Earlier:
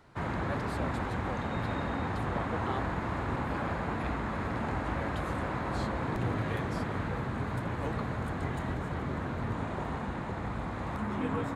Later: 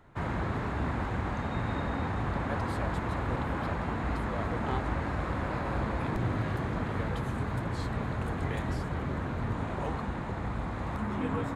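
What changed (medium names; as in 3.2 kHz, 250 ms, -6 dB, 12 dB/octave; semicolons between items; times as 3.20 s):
speech: entry +2.00 s; master: add bass shelf 66 Hz +7.5 dB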